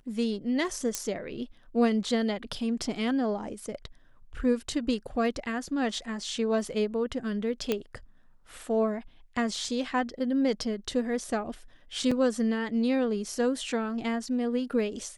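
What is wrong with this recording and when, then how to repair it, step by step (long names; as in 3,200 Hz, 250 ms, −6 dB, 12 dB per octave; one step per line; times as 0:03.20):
0:00.95: click −13 dBFS
0:07.72: click −13 dBFS
0:12.11: drop-out 4.8 ms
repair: click removal
repair the gap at 0:12.11, 4.8 ms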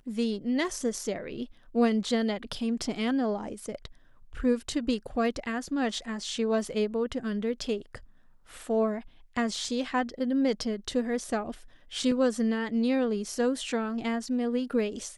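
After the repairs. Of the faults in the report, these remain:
none of them is left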